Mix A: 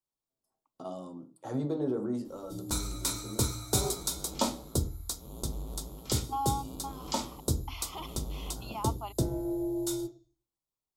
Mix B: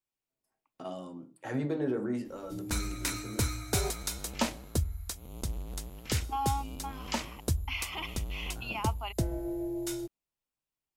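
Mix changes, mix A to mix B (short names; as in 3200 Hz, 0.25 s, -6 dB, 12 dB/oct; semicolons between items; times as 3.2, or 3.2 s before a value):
background: send off; master: add band shelf 2100 Hz +13.5 dB 1.1 oct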